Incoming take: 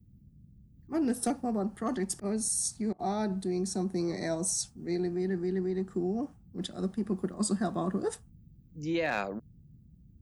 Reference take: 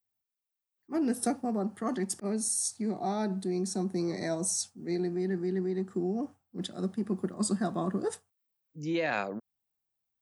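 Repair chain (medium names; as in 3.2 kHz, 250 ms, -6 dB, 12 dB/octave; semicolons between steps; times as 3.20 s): clip repair -20.5 dBFS; interpolate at 2.93 s, 59 ms; noise print and reduce 28 dB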